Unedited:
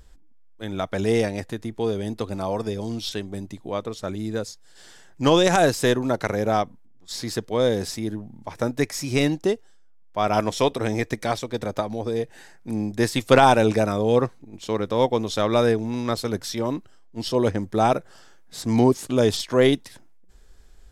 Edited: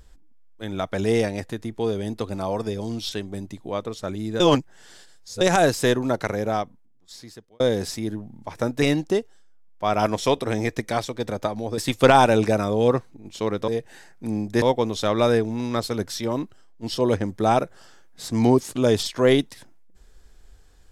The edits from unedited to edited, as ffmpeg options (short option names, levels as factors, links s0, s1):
-filter_complex "[0:a]asplit=8[s0][s1][s2][s3][s4][s5][s6][s7];[s0]atrim=end=4.402[s8];[s1]atrim=start=4.398:end=5.412,asetpts=PTS-STARTPTS,areverse[s9];[s2]atrim=start=5.408:end=7.6,asetpts=PTS-STARTPTS,afade=t=out:st=0.712:d=1.48[s10];[s3]atrim=start=7.6:end=8.822,asetpts=PTS-STARTPTS,afade=t=in:d=0.004:c=hsin[s11];[s4]atrim=start=9.158:end=12.122[s12];[s5]atrim=start=13.058:end=14.962[s13];[s6]atrim=start=12.118:end=13.062[s14];[s7]atrim=start=14.958[s15];[s8][s9]acrossfade=d=0.004:c1=hsin:c2=hsin[s16];[s10][s11]concat=n=2:v=0:a=1[s17];[s16][s17]acrossfade=d=0.004:c1=hsin:c2=hsin[s18];[s18][s12]acrossfade=d=0.004:c1=hsin:c2=hsin[s19];[s19][s13]acrossfade=d=0.004:c1=hsin:c2=hsin[s20];[s20][s14]acrossfade=d=0.004:c1=hsin:c2=hsin[s21];[s21][s15]acrossfade=d=0.004:c1=hsin:c2=hsin"